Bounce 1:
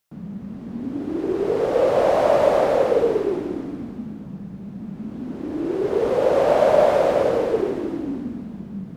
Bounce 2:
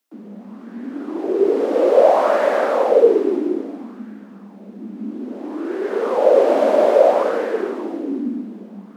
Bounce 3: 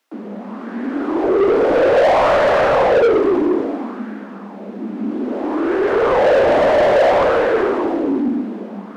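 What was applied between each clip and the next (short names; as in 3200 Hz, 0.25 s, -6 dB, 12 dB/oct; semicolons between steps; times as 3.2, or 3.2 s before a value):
steep high-pass 200 Hz 96 dB/oct; LFO bell 0.6 Hz 280–1700 Hz +10 dB; gain -1 dB
overdrive pedal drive 27 dB, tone 1800 Hz, clips at -1 dBFS; gain -5 dB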